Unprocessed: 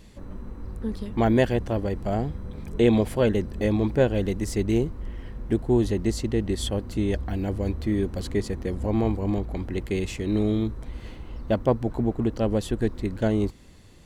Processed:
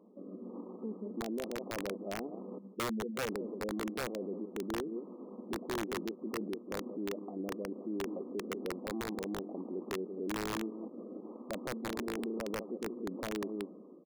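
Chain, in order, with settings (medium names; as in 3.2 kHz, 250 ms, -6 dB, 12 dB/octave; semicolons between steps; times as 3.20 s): 2.58–3.26 s: spectral contrast enhancement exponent 2.5; 11.73–12.44 s: flutter echo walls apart 6.1 m, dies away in 0.43 s; level rider gain up to 14 dB; rotary cabinet horn 1.1 Hz; 4.02–4.73 s: companded quantiser 6-bit; delay 181 ms -17 dB; peak limiter -28.5 dBFS, peak gain reduction 26.5 dB; brick-wall FIR band-pass 180–1300 Hz; peaking EQ 410 Hz +7 dB 1.7 oct; integer overflow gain 23 dB; trim -6.5 dB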